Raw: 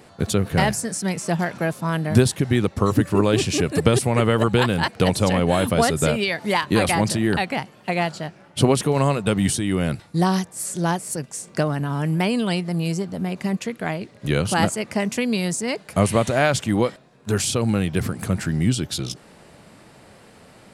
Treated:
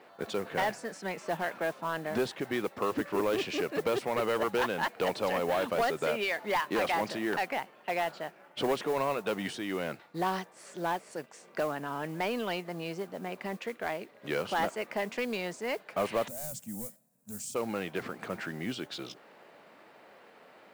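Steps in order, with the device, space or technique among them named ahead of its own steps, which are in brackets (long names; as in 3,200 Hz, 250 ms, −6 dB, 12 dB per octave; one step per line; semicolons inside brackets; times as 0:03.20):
carbon microphone (band-pass filter 410–2,800 Hz; soft clipping −18 dBFS, distortion −12 dB; noise that follows the level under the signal 22 dB)
0:16.28–0:17.55: drawn EQ curve 230 Hz 0 dB, 360 Hz −25 dB, 550 Hz −15 dB, 1,200 Hz −24 dB, 3,400 Hz −20 dB, 7,700 Hz +10 dB
level −4 dB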